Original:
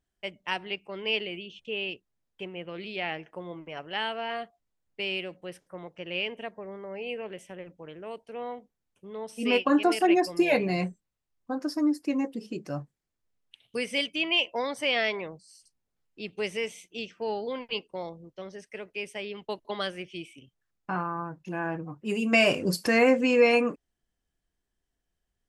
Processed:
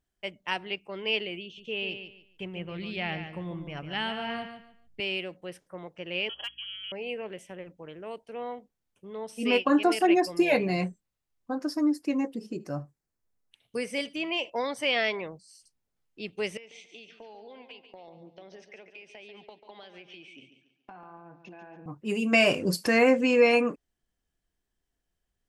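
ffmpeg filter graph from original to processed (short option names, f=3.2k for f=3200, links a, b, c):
-filter_complex "[0:a]asettb=1/sr,asplit=3[a][b][c];[a]atrim=end=1.434[d];[b]atrim=start=1.43:end=5,asetpts=PTS-STARTPTS,afade=t=in:d=0.004:c=qsin,afade=t=out:st=3.566:d=0.004:c=qsin,aecho=1:1:144|288|432:0.355|0.0887|0.0222,atrim=end_sample=157437,asubboost=boost=8.5:cutoff=190[e];[c]atrim=start=4.996[f];[d][e]acrossfade=d=0.004:c1=hsin:c2=qsin[g];[g][f]acrossfade=d=0.004:c1=qsin:c2=hsin,asettb=1/sr,asplit=3[h][i][j];[h]atrim=end=6.294[k];[i]atrim=start=6.29:end=6.92,asetpts=PTS-STARTPTS,afade=t=in:d=0.004:c=qsin,afade=t=out:st=0.626:d=0.004:c=qsin,lowpass=f=3k:t=q:w=0.5098,lowpass=f=3k:t=q:w=0.6013,lowpass=f=3k:t=q:w=0.9,lowpass=f=3k:t=q:w=2.563,afreqshift=-3500,aeval=exprs='val(0)+0.000355*(sin(2*PI*60*n/s)+sin(2*PI*2*60*n/s)/2+sin(2*PI*3*60*n/s)/3+sin(2*PI*4*60*n/s)/4+sin(2*PI*5*60*n/s)/5)':c=same,asoftclip=type=hard:threshold=-27.5dB[l];[j]atrim=start=6.916[m];[k][l]acrossfade=d=0.004:c1=hsin:c2=qsin[n];[n][m]acrossfade=d=0.004:c1=qsin:c2=hsin,asettb=1/sr,asplit=3[o][p][q];[o]atrim=end=12.364[r];[p]atrim=start=12.36:end=14.5,asetpts=PTS-STARTPTS,afade=t=in:d=0.004:c=qsin,afade=t=out:st=2.136:d=0.004:c=qsin,equalizer=f=3.1k:t=o:w=0.89:g=-8,aecho=1:1:76:0.0794,atrim=end_sample=94374[s];[q]atrim=start=14.496[t];[r][s]acrossfade=d=0.004:c1=hsin:c2=qsin[u];[u][t]acrossfade=d=0.004:c1=qsin:c2=hsin,asettb=1/sr,asplit=3[v][w][x];[v]atrim=end=16.574[y];[w]atrim=start=16.57:end=21.86,asetpts=PTS-STARTPTS,afade=t=in:d=0.004:c=qsin,afade=t=out:st=5.286:d=0.004:c=qsin,highpass=f=160:w=0.5412,highpass=f=160:w=1.3066,equalizer=f=190:t=q:w=4:g=-3,equalizer=f=740:t=q:w=4:g=8,equalizer=f=1.2k:t=q:w=4:g=-5,equalizer=f=2.5k:t=q:w=4:g=5,equalizer=f=3.7k:t=q:w=4:g=4,lowpass=f=5.6k:w=0.5412,lowpass=f=5.6k:w=1.3066,acompressor=threshold=-43dB:ratio=20:attack=3.2:release=140:knee=1:detection=peak,aecho=1:1:141|282|423|564:0.316|0.114|0.041|0.0148,atrim=end_sample=233289[z];[x]atrim=start=21.856[aa];[y][z]acrossfade=d=0.004:c1=hsin:c2=qsin[ab];[ab][aa]acrossfade=d=0.004:c1=qsin:c2=hsin"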